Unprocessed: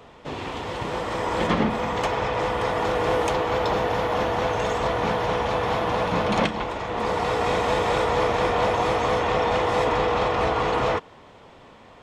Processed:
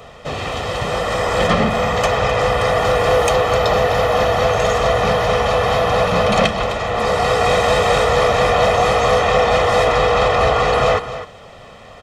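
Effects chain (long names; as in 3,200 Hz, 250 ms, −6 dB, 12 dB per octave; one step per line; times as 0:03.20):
in parallel at −3.5 dB: soft clipping −20.5 dBFS, distortion −13 dB
on the sum: high-shelf EQ 4,800 Hz +5.5 dB
comb filter 1.6 ms, depth 60%
single-tap delay 257 ms −12.5 dB
level +2.5 dB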